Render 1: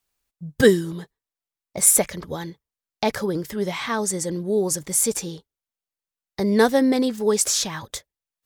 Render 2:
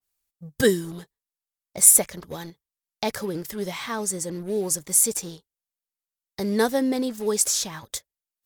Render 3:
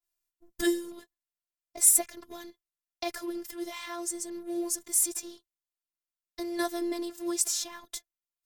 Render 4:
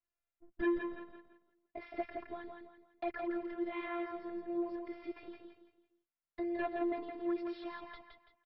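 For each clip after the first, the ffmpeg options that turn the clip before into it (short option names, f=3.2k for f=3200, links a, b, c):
-filter_complex "[0:a]aemphasis=mode=production:type=cd,asplit=2[a][b];[b]acrusher=bits=4:mix=0:aa=0.5,volume=-6dB[c];[a][c]amix=inputs=2:normalize=0,adynamicequalizer=threshold=0.0282:dfrequency=1700:dqfactor=0.7:tfrequency=1700:tqfactor=0.7:attack=5:release=100:ratio=0.375:range=3:mode=cutabove:tftype=highshelf,volume=-8dB"
-af "afftfilt=real='hypot(re,im)*cos(PI*b)':imag='0':win_size=512:overlap=0.75,volume=-3dB"
-af "aresample=11025,asoftclip=type=tanh:threshold=-25.5dB,aresample=44100,lowpass=f=2.4k:w=0.5412,lowpass=f=2.4k:w=1.3066,aecho=1:1:167|334|501|668:0.562|0.197|0.0689|0.0241,volume=-1dB"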